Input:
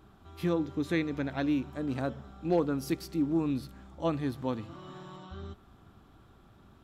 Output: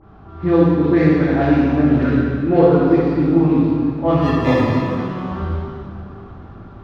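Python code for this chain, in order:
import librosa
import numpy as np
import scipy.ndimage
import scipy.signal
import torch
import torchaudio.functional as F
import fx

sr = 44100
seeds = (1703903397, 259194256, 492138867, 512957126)

p1 = scipy.ndimage.median_filter(x, 15, mode='constant')
p2 = fx.cheby1_bandstop(p1, sr, low_hz=400.0, high_hz=1500.0, order=2, at=(1.97, 2.47))
p3 = fx.rider(p2, sr, range_db=4, speed_s=0.5)
p4 = p2 + F.gain(torch.from_numpy(p3), 2.5).numpy()
p5 = fx.quant_companded(p4, sr, bits=8)
p6 = fx.dispersion(p5, sr, late='highs', ms=57.0, hz=2900.0)
p7 = fx.sample_hold(p6, sr, seeds[0], rate_hz=1500.0, jitter_pct=0, at=(4.17, 4.83))
p8 = fx.air_absorb(p7, sr, metres=260.0)
p9 = fx.rev_plate(p8, sr, seeds[1], rt60_s=2.3, hf_ratio=0.85, predelay_ms=0, drr_db=-7.5)
y = F.gain(torch.from_numpy(p9), 3.0).numpy()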